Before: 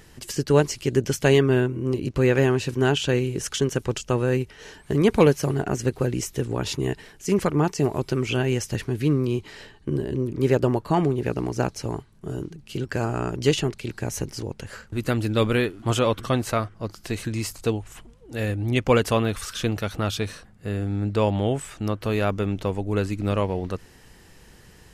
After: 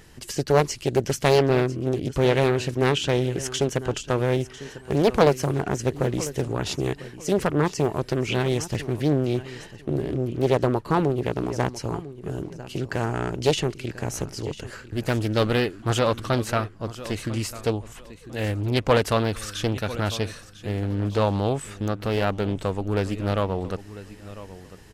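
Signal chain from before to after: on a send: feedback echo 0.998 s, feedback 24%, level -16 dB; on the sum: Doppler distortion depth 0.54 ms

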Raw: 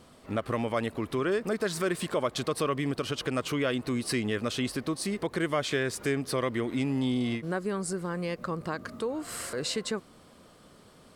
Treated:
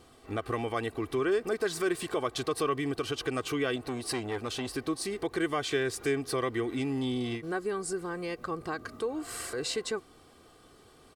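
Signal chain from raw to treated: comb 2.6 ms, depth 58%; 3.76–4.74 core saturation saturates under 850 Hz; gain -2.5 dB

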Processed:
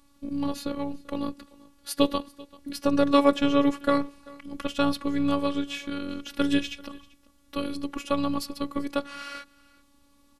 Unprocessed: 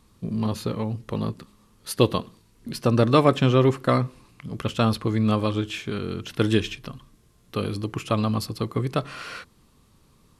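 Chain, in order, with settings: echo 0.389 s -23 dB; robotiser 282 Hz

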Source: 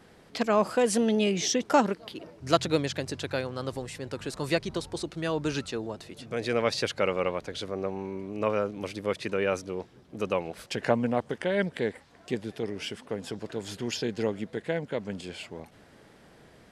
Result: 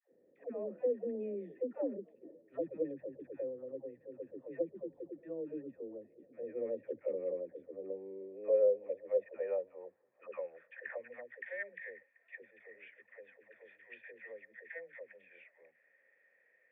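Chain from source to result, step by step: vocal tract filter e; band-pass sweep 300 Hz -> 2000 Hz, 7.73–11.23; dispersion lows, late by 0.125 s, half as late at 510 Hz; gain +5 dB

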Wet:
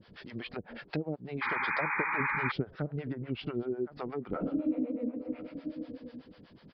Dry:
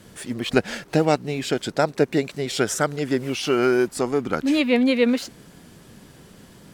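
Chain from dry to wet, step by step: downsampling 11025 Hz; 4.28–4.74 reverb throw, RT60 1.6 s, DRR -10 dB; treble ducked by the level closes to 520 Hz, closed at -15.5 dBFS; 2.2–3.63 tone controls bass +9 dB, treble -11 dB; echo 1.062 s -21 dB; compressor 4:1, threshold -21 dBFS, peak gain reduction 12.5 dB; harmonic tremolo 8.1 Hz, depth 100%, crossover 560 Hz; 1.41–2.52 painted sound noise 800–2500 Hz -27 dBFS; gain -5 dB

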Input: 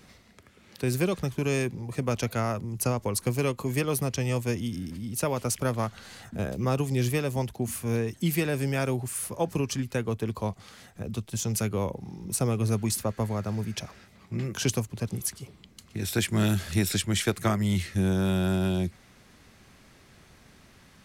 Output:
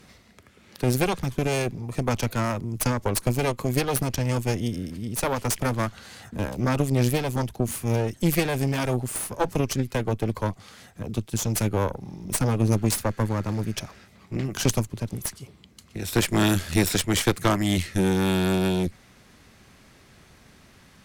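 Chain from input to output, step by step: 14.99–16.13 half-wave gain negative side -3 dB; added harmonics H 4 -11 dB, 8 -28 dB, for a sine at -12 dBFS; gain +2 dB

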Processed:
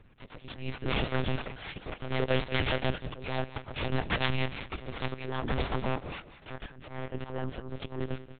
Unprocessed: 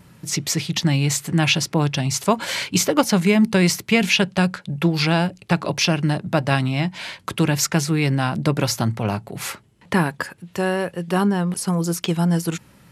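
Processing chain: added harmonics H 3 -7 dB, 4 -23 dB, 8 -21 dB, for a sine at -1.5 dBFS; plain phase-vocoder stretch 0.65×; auto swell 0.401 s; in parallel at -6.5 dB: wrapped overs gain 25 dB; on the sum: flange 1.6 Hz, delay 1.9 ms, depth 3.1 ms, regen -87%; on a send: feedback echo 0.191 s, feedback 28%, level -14 dB; on the sum: monotone LPC vocoder at 8 kHz 130 Hz; gain +4.5 dB

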